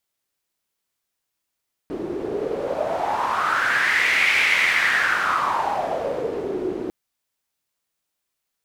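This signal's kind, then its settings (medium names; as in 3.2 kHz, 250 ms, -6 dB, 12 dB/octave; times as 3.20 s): wind-like swept noise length 5.00 s, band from 350 Hz, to 2.2 kHz, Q 5.5, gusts 1, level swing 9 dB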